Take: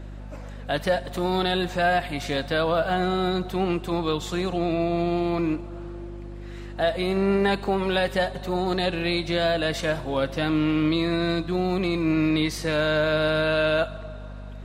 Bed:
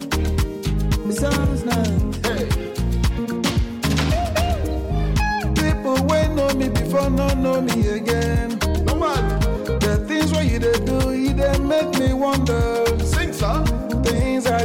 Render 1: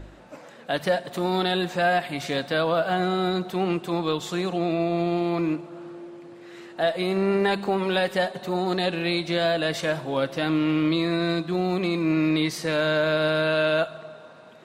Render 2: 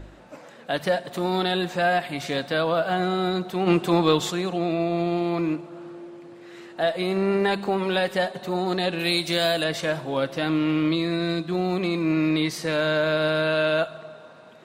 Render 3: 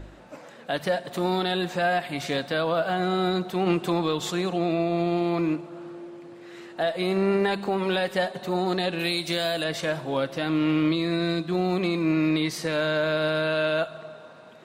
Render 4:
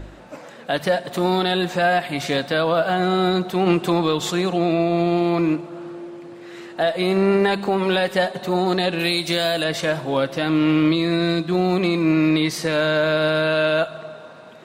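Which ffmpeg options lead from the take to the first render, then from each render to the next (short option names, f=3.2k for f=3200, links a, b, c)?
-af "bandreject=f=50:t=h:w=4,bandreject=f=100:t=h:w=4,bandreject=f=150:t=h:w=4,bandreject=f=200:t=h:w=4,bandreject=f=250:t=h:w=4"
-filter_complex "[0:a]asplit=3[a][b][c];[a]afade=t=out:st=3.66:d=0.02[d];[b]acontrast=63,afade=t=in:st=3.66:d=0.02,afade=t=out:st=4.3:d=0.02[e];[c]afade=t=in:st=4.3:d=0.02[f];[d][e][f]amix=inputs=3:normalize=0,asettb=1/sr,asplit=3[g][h][i];[g]atrim=end=8.994[j];[h]atrim=start=8.99:end=9.64,asetpts=PTS-STARTPTS,afade=t=in:d=0.004:c=qsin,afade=t=out:st=0.646:d=0.004:c=qsin,aemphasis=mode=production:type=75fm[k];[i]atrim=start=9.636[l];[j][k]acrossfade=d=0.004:c1=hsin:c2=qsin[m];[m][l]acrossfade=d=0.004:c1=qsin:c2=hsin,asettb=1/sr,asplit=3[n][o][p];[n]atrim=end=10.954[q];[o]atrim=start=10.95:end=11.49,asetpts=PTS-STARTPTS,afade=t=in:d=0.004:c=qsin,afade=t=out:st=0.536:d=0.004:c=qsin,equalizer=f=980:t=o:w=1.5:g=-4.5[r];[p]atrim=start=11.486[s];[q][r]acrossfade=d=0.004:c1=hsin:c2=qsin[t];[t][s]acrossfade=d=0.004:c1=qsin:c2=hsin"
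-af "alimiter=limit=-14.5dB:level=0:latency=1:release=211"
-af "volume=5.5dB"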